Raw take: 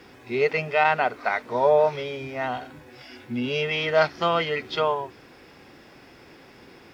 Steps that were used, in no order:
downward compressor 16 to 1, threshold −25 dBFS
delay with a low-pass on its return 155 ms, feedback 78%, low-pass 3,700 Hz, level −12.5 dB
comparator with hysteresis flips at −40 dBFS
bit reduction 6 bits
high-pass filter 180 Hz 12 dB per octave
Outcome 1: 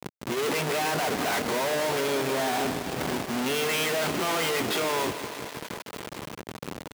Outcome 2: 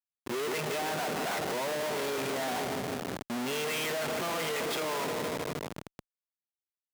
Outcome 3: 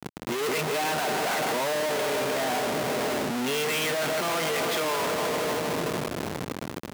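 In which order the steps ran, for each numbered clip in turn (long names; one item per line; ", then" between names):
comparator with hysteresis, then downward compressor, then delay with a low-pass on its return, then bit reduction, then high-pass filter
bit reduction, then downward compressor, then delay with a low-pass on its return, then comparator with hysteresis, then high-pass filter
delay with a low-pass on its return, then comparator with hysteresis, then downward compressor, then bit reduction, then high-pass filter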